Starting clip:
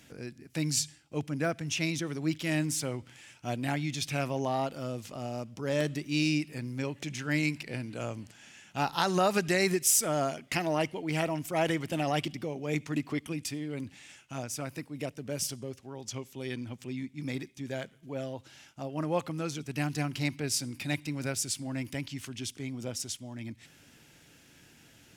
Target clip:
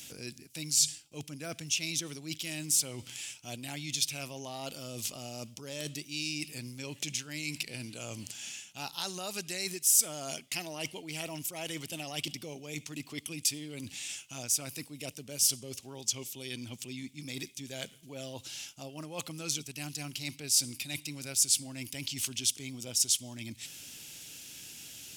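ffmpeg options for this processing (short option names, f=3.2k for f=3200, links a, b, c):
-af "areverse,acompressor=threshold=-39dB:ratio=6,areverse,aexciter=amount=4.5:drive=5.2:freq=2.5k"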